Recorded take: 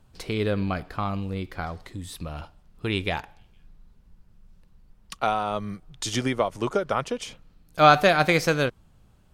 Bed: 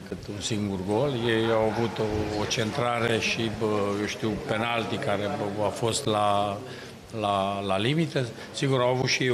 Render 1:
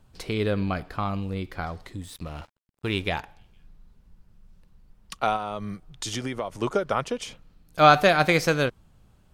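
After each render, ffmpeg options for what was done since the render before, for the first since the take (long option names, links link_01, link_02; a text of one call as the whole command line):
ffmpeg -i in.wav -filter_complex "[0:a]asettb=1/sr,asplit=3[link_01][link_02][link_03];[link_01]atrim=end=2.024[link_04];[link_02]atrim=start=2.02:end=3.08,asetpts=PTS-STARTPTS,afade=type=in:duration=0.004:curve=qsin,afade=type=out:start_time=1.056:duration=0.004:curve=qsin,aeval=exprs='sgn(val(0))*max(abs(val(0))-0.00473,0)':channel_layout=same[link_05];[link_03]atrim=start=3.076[link_06];[link_04][link_05]acrossfade=duration=0.004:curve1=hsin:curve2=qsin[link_07];[link_07][link_06]acrossfade=duration=0.004:curve1=qsin:curve2=hsin,asettb=1/sr,asplit=3[link_08][link_09][link_10];[link_08]atrim=end=5.364[link_11];[link_09]atrim=start=5.36:end=6.56,asetpts=PTS-STARTPTS,afade=type=in:duration=0.004:curve=qsin,afade=type=out:start_time=1.196:duration=0.004:curve=qsin,acompressor=threshold=-28dB:ratio=2.5:attack=3.2:release=140:knee=1:detection=peak[link_12];[link_10]atrim=start=6.556[link_13];[link_11][link_12]acrossfade=duration=0.004:curve1=hsin:curve2=qsin[link_14];[link_14][link_13]acrossfade=duration=0.004:curve1=qsin:curve2=hsin" out.wav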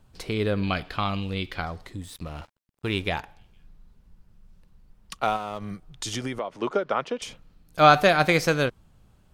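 ffmpeg -i in.wav -filter_complex "[0:a]asettb=1/sr,asplit=3[link_01][link_02][link_03];[link_01]atrim=end=0.634[link_04];[link_02]atrim=start=0.63:end=1.62,asetpts=PTS-STARTPTS,afade=type=in:duration=0.004:curve=qsin,afade=type=out:start_time=0.986:duration=0.004:curve=qsin,equalizer=frequency=3200:width_type=o:width=1.3:gain=12[link_05];[link_03]atrim=start=1.616[link_06];[link_04][link_05]acrossfade=duration=0.004:curve1=hsin:curve2=qsin[link_07];[link_07][link_06]acrossfade=duration=0.004:curve1=qsin:curve2=hsin,asettb=1/sr,asplit=3[link_08][link_09][link_10];[link_08]atrim=end=5.234[link_11];[link_09]atrim=start=5.23:end=5.71,asetpts=PTS-STARTPTS,afade=type=in:duration=0.004:curve=qsin,afade=type=out:start_time=0.476:duration=0.004:curve=qsin,aeval=exprs='sgn(val(0))*max(abs(val(0))-0.00562,0)':channel_layout=same[link_12];[link_10]atrim=start=5.706[link_13];[link_11][link_12]acrossfade=duration=0.004:curve1=hsin:curve2=qsin[link_14];[link_14][link_13]acrossfade=duration=0.004:curve1=qsin:curve2=hsin,asettb=1/sr,asplit=3[link_15][link_16][link_17];[link_15]atrim=end=6.394[link_18];[link_16]atrim=start=6.39:end=7.22,asetpts=PTS-STARTPTS,afade=type=in:duration=0.004:curve=qsin,afade=type=out:start_time=0.826:duration=0.004:curve=qsin,acrossover=split=180 4900:gain=0.141 1 0.126[link_19][link_20][link_21];[link_19][link_20][link_21]amix=inputs=3:normalize=0[link_22];[link_17]atrim=start=7.216[link_23];[link_18][link_22]acrossfade=duration=0.004:curve1=hsin:curve2=qsin[link_24];[link_24][link_23]acrossfade=duration=0.004:curve1=qsin:curve2=hsin" out.wav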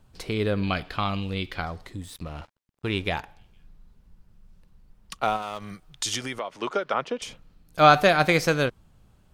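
ffmpeg -i in.wav -filter_complex "[0:a]asettb=1/sr,asplit=3[link_01][link_02][link_03];[link_01]atrim=end=2.224[link_04];[link_02]atrim=start=2.22:end=3.06,asetpts=PTS-STARTPTS,afade=type=in:duration=0.004:curve=qsin,afade=type=out:start_time=0.836:duration=0.004:curve=qsin,highshelf=frequency=7600:gain=-6.5[link_05];[link_03]atrim=start=3.056[link_06];[link_04][link_05]acrossfade=duration=0.004:curve1=hsin:curve2=qsin[link_07];[link_07][link_06]acrossfade=duration=0.004:curve1=qsin:curve2=hsin,asettb=1/sr,asplit=3[link_08][link_09][link_10];[link_08]atrim=end=5.424[link_11];[link_09]atrim=start=5.42:end=6.94,asetpts=PTS-STARTPTS,afade=type=in:duration=0.004:curve=qsin,afade=type=out:start_time=1.516:duration=0.004:curve=qsin,tiltshelf=frequency=880:gain=-5[link_12];[link_10]atrim=start=6.936[link_13];[link_11][link_12]acrossfade=duration=0.004:curve1=hsin:curve2=qsin[link_14];[link_14][link_13]acrossfade=duration=0.004:curve1=qsin:curve2=hsin" out.wav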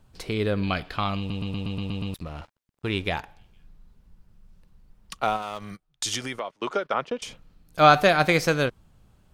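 ffmpeg -i in.wav -filter_complex "[0:a]asplit=3[link_01][link_02][link_03];[link_01]afade=type=out:start_time=5.67:duration=0.02[link_04];[link_02]agate=range=-20dB:threshold=-41dB:ratio=16:release=100:detection=peak,afade=type=in:start_time=5.67:duration=0.02,afade=type=out:start_time=7.28:duration=0.02[link_05];[link_03]afade=type=in:start_time=7.28:duration=0.02[link_06];[link_04][link_05][link_06]amix=inputs=3:normalize=0,asplit=9[link_07][link_08][link_09][link_10][link_11][link_12][link_13][link_14][link_15];[link_07]atrim=end=1.302[link_16];[link_08]atrim=start=1.178:end=1.302[link_17];[link_09]atrim=start=1.178:end=1.302[link_18];[link_10]atrim=start=1.178:end=1.302[link_19];[link_11]atrim=start=1.178:end=1.302[link_20];[link_12]atrim=start=1.178:end=1.302[link_21];[link_13]atrim=start=1.178:end=1.302[link_22];[link_14]atrim=start=1.178:end=1.302[link_23];[link_15]atrim=start=2.138[link_24];[link_16][link_17]acrossfade=duration=0.004:curve1=hsin:curve2=hsin[link_25];[link_25][link_18]acrossfade=duration=0.004:curve1=hsin:curve2=hsin[link_26];[link_26][link_19]acrossfade=duration=0.004:curve1=hsin:curve2=hsin[link_27];[link_27][link_20]acrossfade=duration=0.004:curve1=hsin:curve2=hsin[link_28];[link_28][link_21]acrossfade=duration=0.004:curve1=hsin:curve2=hsin[link_29];[link_29][link_22]acrossfade=duration=0.004:curve1=hsin:curve2=hsin[link_30];[link_30][link_23]acrossfade=duration=0.004:curve1=hsin:curve2=hsin[link_31];[link_31][link_24]acrossfade=duration=0.004:curve1=hsin:curve2=hsin" out.wav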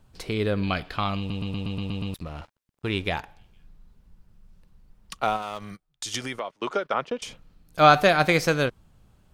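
ffmpeg -i in.wav -filter_complex "[0:a]asplit=2[link_01][link_02];[link_01]atrim=end=6.14,asetpts=PTS-STARTPTS,afade=type=out:start_time=5.61:duration=0.53:silence=0.473151[link_03];[link_02]atrim=start=6.14,asetpts=PTS-STARTPTS,afade=type=in:duration=0.004:curve=hsin:silence=0.473151[link_04];[link_03][link_04]concat=n=2:v=0:a=1" out.wav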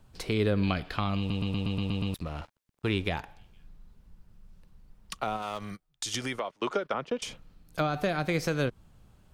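ffmpeg -i in.wav -filter_complex "[0:a]alimiter=limit=-12.5dB:level=0:latency=1:release=218,acrossover=split=410[link_01][link_02];[link_02]acompressor=threshold=-29dB:ratio=6[link_03];[link_01][link_03]amix=inputs=2:normalize=0" out.wav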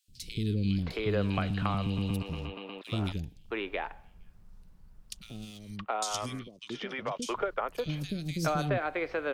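ffmpeg -i in.wav -filter_complex "[0:a]acrossover=split=320|3000[link_01][link_02][link_03];[link_01]adelay=80[link_04];[link_02]adelay=670[link_05];[link_04][link_05][link_03]amix=inputs=3:normalize=0" out.wav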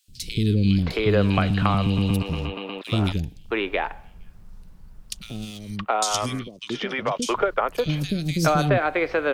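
ffmpeg -i in.wav -af "volume=9.5dB" out.wav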